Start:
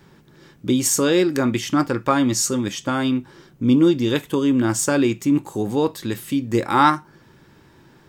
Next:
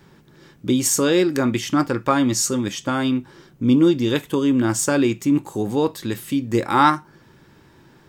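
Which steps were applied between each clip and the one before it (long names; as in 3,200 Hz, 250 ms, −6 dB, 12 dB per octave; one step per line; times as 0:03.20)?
no processing that can be heard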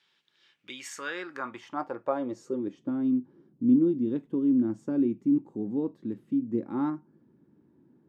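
band-pass filter sweep 3,300 Hz → 250 Hz, 0:00.37–0:02.98
level −4 dB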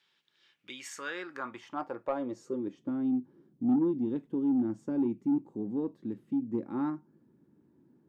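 soft clipping −17.5 dBFS, distortion −18 dB
level −2.5 dB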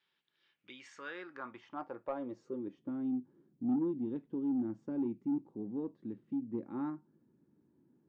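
high-frequency loss of the air 150 metres
level −5.5 dB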